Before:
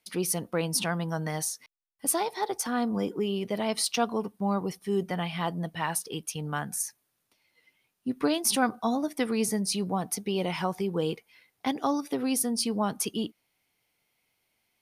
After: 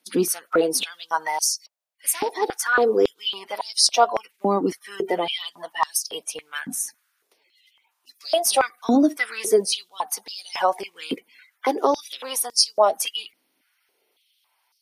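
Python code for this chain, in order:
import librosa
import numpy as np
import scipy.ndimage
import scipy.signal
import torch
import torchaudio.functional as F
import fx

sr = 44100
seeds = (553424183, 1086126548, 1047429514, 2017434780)

y = fx.spec_quant(x, sr, step_db=30)
y = fx.filter_held_highpass(y, sr, hz=3.6, low_hz=270.0, high_hz=5100.0)
y = F.gain(torch.from_numpy(y), 5.0).numpy()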